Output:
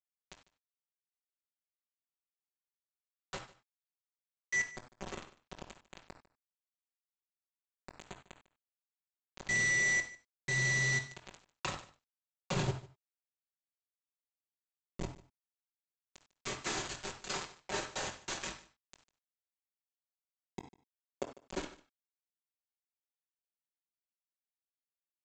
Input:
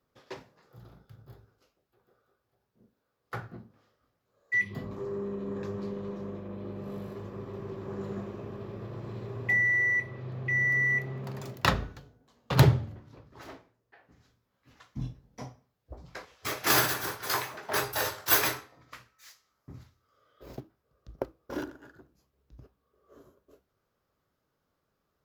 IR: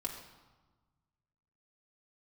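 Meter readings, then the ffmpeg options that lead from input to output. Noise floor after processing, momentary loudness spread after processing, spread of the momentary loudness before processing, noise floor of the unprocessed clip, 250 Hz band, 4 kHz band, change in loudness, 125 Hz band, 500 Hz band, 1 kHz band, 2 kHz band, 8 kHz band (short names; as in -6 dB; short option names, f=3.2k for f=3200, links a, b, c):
under -85 dBFS, 23 LU, 23 LU, -79 dBFS, -11.0 dB, -7.0 dB, -6.0 dB, -12.0 dB, -10.0 dB, -10.5 dB, -6.5 dB, -3.0 dB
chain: -filter_complex "[0:a]bandreject=f=50:t=h:w=6,bandreject=f=100:t=h:w=6,bandreject=f=150:t=h:w=6,bandreject=f=200:t=h:w=6,acompressor=threshold=-28dB:ratio=10,aresample=16000,acrusher=bits=4:mix=0:aa=0.000001,aresample=44100,aecho=1:1:149:0.1[a];[1:a]atrim=start_sample=2205,atrim=end_sample=3528,asetrate=33957,aresample=44100[b];[a][b]afir=irnorm=-1:irlink=0,volume=-6.5dB"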